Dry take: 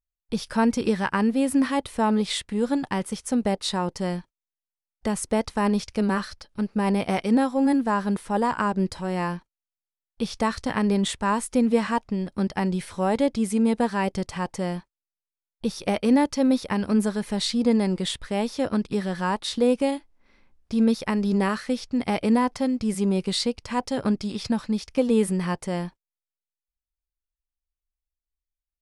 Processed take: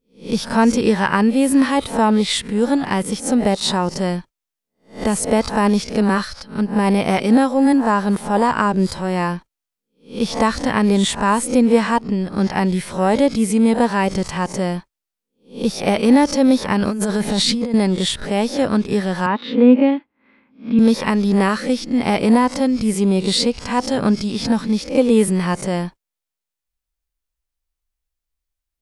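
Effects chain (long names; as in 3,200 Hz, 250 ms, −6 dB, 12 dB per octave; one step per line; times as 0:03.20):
peak hold with a rise ahead of every peak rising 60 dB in 0.32 s
0:16.82–0:17.74: compressor whose output falls as the input rises −26 dBFS, ratio −1
0:19.26–0:20.79: loudspeaker in its box 200–2,900 Hz, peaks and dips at 250 Hz +9 dB, 400 Hz −3 dB, 700 Hz −6 dB
level +6.5 dB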